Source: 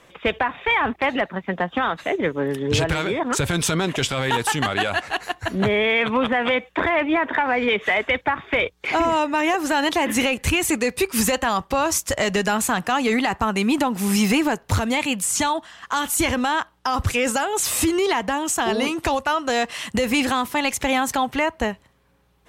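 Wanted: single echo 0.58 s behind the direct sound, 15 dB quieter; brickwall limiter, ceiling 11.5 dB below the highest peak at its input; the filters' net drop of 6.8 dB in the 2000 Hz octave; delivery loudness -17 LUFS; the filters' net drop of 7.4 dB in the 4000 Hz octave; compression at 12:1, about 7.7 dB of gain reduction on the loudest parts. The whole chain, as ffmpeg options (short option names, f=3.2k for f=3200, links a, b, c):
-af "equalizer=f=2k:t=o:g=-6.5,equalizer=f=4k:t=o:g=-7.5,acompressor=threshold=-24dB:ratio=12,alimiter=level_in=1.5dB:limit=-24dB:level=0:latency=1,volume=-1.5dB,aecho=1:1:580:0.178,volume=17dB"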